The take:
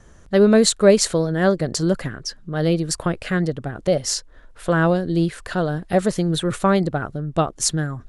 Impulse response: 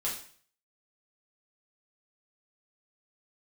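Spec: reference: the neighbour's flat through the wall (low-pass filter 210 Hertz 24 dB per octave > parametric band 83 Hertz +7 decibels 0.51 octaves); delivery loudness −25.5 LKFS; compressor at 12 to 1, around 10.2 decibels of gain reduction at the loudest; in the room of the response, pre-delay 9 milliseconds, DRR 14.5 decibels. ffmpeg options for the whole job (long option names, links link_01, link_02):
-filter_complex "[0:a]acompressor=threshold=-19dB:ratio=12,asplit=2[link_01][link_02];[1:a]atrim=start_sample=2205,adelay=9[link_03];[link_02][link_03]afir=irnorm=-1:irlink=0,volume=-19dB[link_04];[link_01][link_04]amix=inputs=2:normalize=0,lowpass=frequency=210:width=0.5412,lowpass=frequency=210:width=1.3066,equalizer=frequency=83:width_type=o:width=0.51:gain=7,volume=5dB"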